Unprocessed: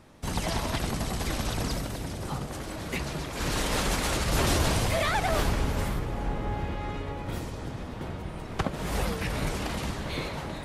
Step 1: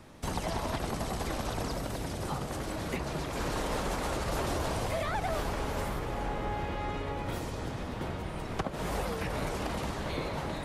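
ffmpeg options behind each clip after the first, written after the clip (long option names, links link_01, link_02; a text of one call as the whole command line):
ffmpeg -i in.wav -filter_complex "[0:a]acrossover=split=360|1300[link_01][link_02][link_03];[link_01]acompressor=threshold=-37dB:ratio=4[link_04];[link_02]acompressor=threshold=-35dB:ratio=4[link_05];[link_03]acompressor=threshold=-45dB:ratio=4[link_06];[link_04][link_05][link_06]amix=inputs=3:normalize=0,volume=2dB" out.wav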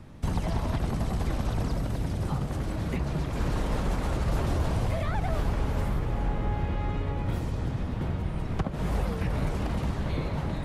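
ffmpeg -i in.wav -af "bass=frequency=250:gain=11,treble=frequency=4000:gain=-4,volume=-1.5dB" out.wav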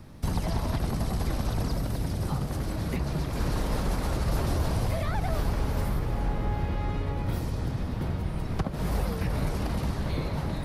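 ffmpeg -i in.wav -af "aexciter=amount=2:drive=3.3:freq=4200" out.wav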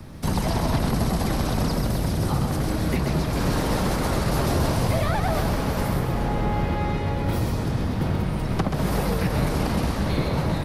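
ffmpeg -i in.wav -filter_complex "[0:a]acrossover=split=110|1700|5300[link_01][link_02][link_03][link_04];[link_01]asoftclip=type=tanh:threshold=-35dB[link_05];[link_05][link_02][link_03][link_04]amix=inputs=4:normalize=0,aecho=1:1:131:0.501,volume=7dB" out.wav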